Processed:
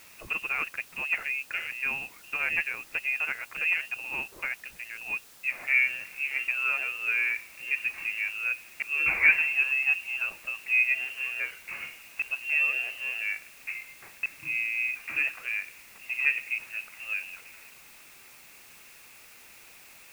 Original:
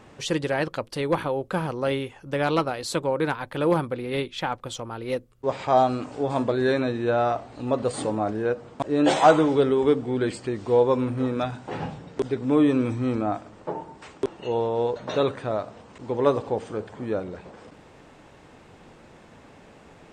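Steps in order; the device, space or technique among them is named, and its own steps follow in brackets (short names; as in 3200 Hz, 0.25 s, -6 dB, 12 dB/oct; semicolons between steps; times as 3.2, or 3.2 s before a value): scrambled radio voice (BPF 300–2900 Hz; inverted band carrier 3000 Hz; white noise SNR 22 dB); gain -4.5 dB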